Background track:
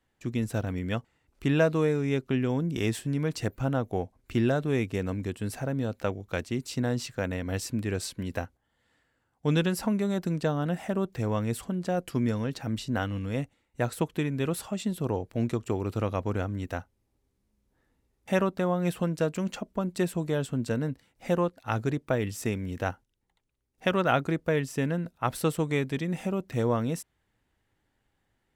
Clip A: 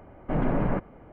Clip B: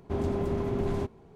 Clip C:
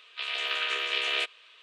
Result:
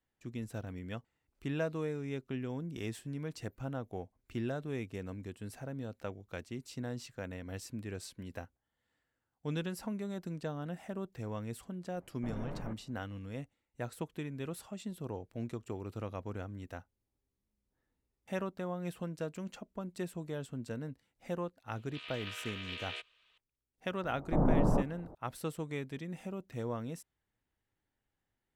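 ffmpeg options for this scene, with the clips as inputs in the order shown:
-filter_complex "[1:a]asplit=2[a][b];[0:a]volume=-11.5dB[c];[b]lowpass=f=1.1k:w=0.5412,lowpass=f=1.1k:w=1.3066[d];[a]atrim=end=1.12,asetpts=PTS-STARTPTS,volume=-17dB,afade=t=in:d=0.004:c=hsin,afade=t=out:st=1.116:d=0.004:c=hsin,adelay=11940[e];[3:a]atrim=end=1.62,asetpts=PTS-STARTPTS,volume=-14.5dB,afade=t=in:d=0.004:c=hsin,afade=t=out:st=1.616:d=0.004:c=hsin,adelay=21760[f];[d]atrim=end=1.12,asetpts=PTS-STARTPTS,volume=-2dB,afade=t=in:d=0.004:c=hsin,afade=t=out:st=1.116:d=0.004:c=hsin,adelay=24030[g];[c][e][f][g]amix=inputs=4:normalize=0"

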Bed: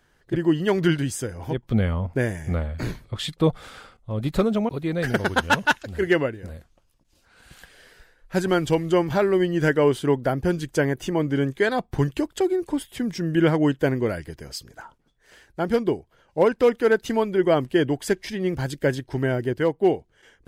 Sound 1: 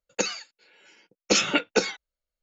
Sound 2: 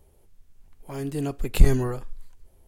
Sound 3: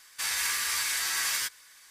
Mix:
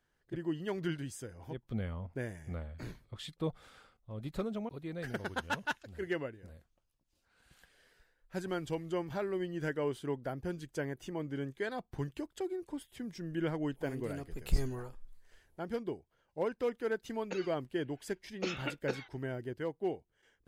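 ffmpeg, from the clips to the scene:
-filter_complex "[0:a]volume=-15.5dB[a];[1:a]lowpass=3.2k[b];[2:a]atrim=end=2.67,asetpts=PTS-STARTPTS,volume=-14.5dB,afade=t=in:d=0.004:c=hsin,afade=t=out:st=2.666:d=0.004:c=hsin,adelay=12920[c];[b]atrim=end=2.42,asetpts=PTS-STARTPTS,volume=-14.5dB,afade=t=in:d=0.004:c=hsin,afade=t=out:st=2.416:d=0.004:c=hsin,adelay=17120[d];[a][c][d]amix=inputs=3:normalize=0"

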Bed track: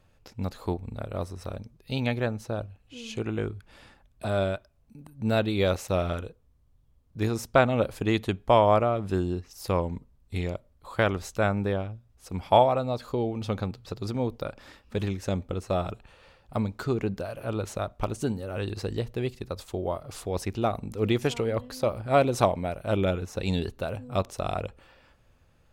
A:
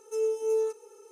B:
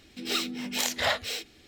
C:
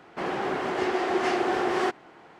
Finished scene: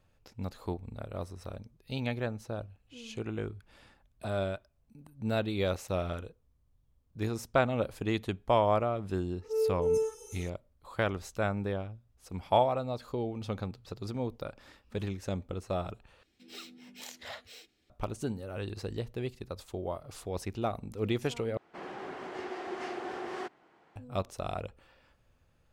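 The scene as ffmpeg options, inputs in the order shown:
-filter_complex "[0:a]volume=-6dB[a];[1:a]acrossover=split=930|2800[b][c][d];[c]adelay=40[e];[d]adelay=440[f];[b][e][f]amix=inputs=3:normalize=0[g];[a]asplit=3[h][i][j];[h]atrim=end=16.234[k];[2:a]atrim=end=1.67,asetpts=PTS-STARTPTS,volume=-17.5dB[l];[i]atrim=start=17.896:end=21.574[m];[3:a]atrim=end=2.39,asetpts=PTS-STARTPTS,volume=-13dB[n];[j]atrim=start=23.956[o];[g]atrim=end=1.11,asetpts=PTS-STARTPTS,volume=-0.5dB,afade=t=in:d=0.004:c=hsin,afade=t=out:st=1.106:d=0.004:c=hsin,adelay=413658S[p];[k][l]acrossfade=d=0.004:c1=hsin:c2=hsin[q];[q][m]acrossfade=d=0.004:c1=hsin:c2=hsin[r];[r][n]acrossfade=d=0.004:c1=hsin:c2=hsin[s];[s][o]acrossfade=d=0.004:c1=hsin:c2=hsin[t];[t][p]amix=inputs=2:normalize=0"

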